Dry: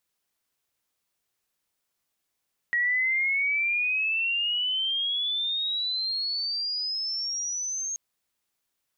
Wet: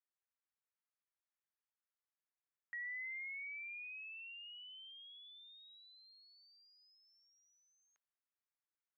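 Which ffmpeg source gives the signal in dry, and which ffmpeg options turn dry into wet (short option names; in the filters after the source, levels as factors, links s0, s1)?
-f lavfi -i "aevalsrc='pow(10,(-21.5-7*t/5.23)/20)*sin(2*PI*1900*5.23/log(6500/1900)*(exp(log(6500/1900)*t/5.23)-1))':d=5.23:s=44100"
-af "alimiter=level_in=1.12:limit=0.0631:level=0:latency=1,volume=0.891,lowpass=f=1800:w=0.5412,lowpass=f=1800:w=1.3066,aderivative"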